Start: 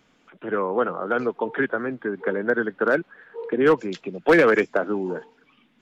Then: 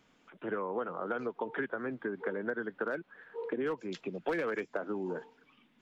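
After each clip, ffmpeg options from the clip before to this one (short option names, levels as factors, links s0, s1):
-af "equalizer=f=960:w=7.8:g=2.5,acompressor=threshold=0.0501:ratio=6,volume=0.531"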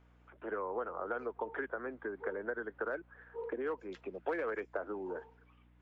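-filter_complex "[0:a]acrossover=split=310 2100:gain=0.126 1 0.224[s0][s1][s2];[s0][s1][s2]amix=inputs=3:normalize=0,aeval=exprs='val(0)+0.000794*(sin(2*PI*60*n/s)+sin(2*PI*2*60*n/s)/2+sin(2*PI*3*60*n/s)/3+sin(2*PI*4*60*n/s)/4+sin(2*PI*5*60*n/s)/5)':c=same,volume=0.891"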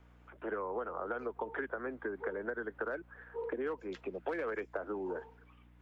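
-filter_complex "[0:a]acrossover=split=250|3000[s0][s1][s2];[s1]acompressor=threshold=0.01:ratio=2.5[s3];[s0][s3][s2]amix=inputs=3:normalize=0,volume=1.5"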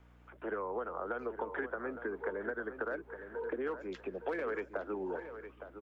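-filter_complex "[0:a]asplit=2[s0][s1];[s1]adelay=863,lowpass=f=2700:p=1,volume=0.316,asplit=2[s2][s3];[s3]adelay=863,lowpass=f=2700:p=1,volume=0.26,asplit=2[s4][s5];[s5]adelay=863,lowpass=f=2700:p=1,volume=0.26[s6];[s0][s2][s4][s6]amix=inputs=4:normalize=0"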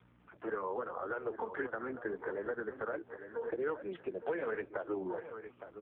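-af "flanger=delay=1.9:depth=7.1:regen=-43:speed=0.83:shape=sinusoidal,volume=1.88" -ar 8000 -c:a libopencore_amrnb -b:a 5150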